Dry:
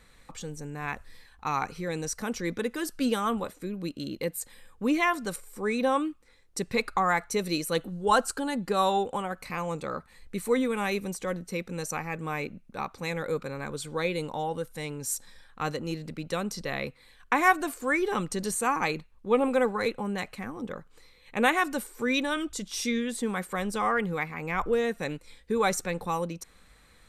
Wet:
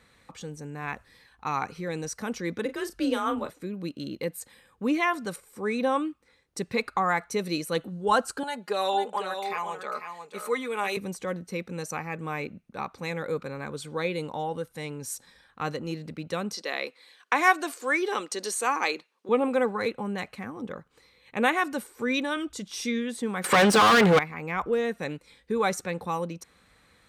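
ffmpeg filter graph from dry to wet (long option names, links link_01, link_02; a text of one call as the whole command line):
ffmpeg -i in.wav -filter_complex "[0:a]asettb=1/sr,asplit=3[link_01][link_02][link_03];[link_01]atrim=end=2.654[link_04];[link_02]atrim=start=2.65:end=3.5,asetpts=PTS-STARTPTS,afade=type=in:duration=0.004:curve=qsin,afade=type=out:start_time=0.846:duration=0.004:curve=qsin,highshelf=frequency=9300:gain=-4,afreqshift=34,asplit=2[link_05][link_06];[link_06]adelay=36,volume=-10dB[link_07];[link_05][link_07]amix=inputs=2:normalize=0,atrim=end_sample=37485[link_08];[link_03]atrim=start=3.496[link_09];[link_04][link_08]acrossfade=duration=0.004:curve1=hsin:curve2=qsin[link_10];[link_10][link_09]acrossfade=duration=0.004:curve1=qsin:curve2=hsin,asettb=1/sr,asplit=3[link_11][link_12][link_13];[link_11]atrim=end=8.434[link_14];[link_12]atrim=start=8.43:end=10.97,asetpts=PTS-STARTPTS,afade=type=in:duration=0.004:curve=qsin,afade=type=out:start_time=2.536:duration=0.004:curve=qsin,highpass=510,aecho=1:1:4.8:0.74,atrim=end_sample=112014,aecho=1:1:496:0.422,atrim=end_sample=112014[link_15];[link_13]atrim=start=10.966[link_16];[link_14][link_15]acrossfade=duration=0.004:curve1=hsin:curve2=qsin[link_17];[link_17][link_16]acrossfade=duration=0.004:curve1=qsin:curve2=hsin,asettb=1/sr,asplit=3[link_18][link_19][link_20];[link_18]atrim=end=16.534[link_21];[link_19]atrim=start=16.53:end=19.29,asetpts=PTS-STARTPTS,afade=type=in:duration=0.004:curve=qsin,afade=type=out:start_time=2.756:duration=0.004:curve=qsin,highpass=frequency=300:width=0.5412,highpass=frequency=300:width=1.3066,equalizer=frequency=5100:width_type=o:width=1.9:gain=7[link_22];[link_20]atrim=start=19.286[link_23];[link_21][link_22]acrossfade=duration=0.004:curve1=hsin:curve2=qsin[link_24];[link_24][link_23]acrossfade=duration=0.004:curve1=qsin:curve2=hsin,asettb=1/sr,asplit=3[link_25][link_26][link_27];[link_25]atrim=end=23.444[link_28];[link_26]atrim=start=23.44:end=24.19,asetpts=PTS-STARTPTS,afade=type=in:duration=0.004:curve=qsin,afade=type=out:start_time=0.746:duration=0.004:curve=qsin,asplit=2[link_29][link_30];[link_30]highpass=frequency=720:poles=1,volume=26dB,asoftclip=type=tanh:threshold=-16dB[link_31];[link_29][link_31]amix=inputs=2:normalize=0,lowpass=frequency=4600:poles=1,volume=-6dB,acontrast=71,aeval=exprs='0.188*(abs(mod(val(0)/0.188+3,4)-2)-1)':channel_layout=same[link_32];[link_27]atrim=start=24.186[link_33];[link_28][link_32]acrossfade=duration=0.004:curve1=hsin:curve2=qsin[link_34];[link_34][link_33]acrossfade=duration=0.004:curve1=qsin:curve2=hsin,highpass=77,highshelf=frequency=6900:gain=-6,bandreject=frequency=7400:width=25" out.wav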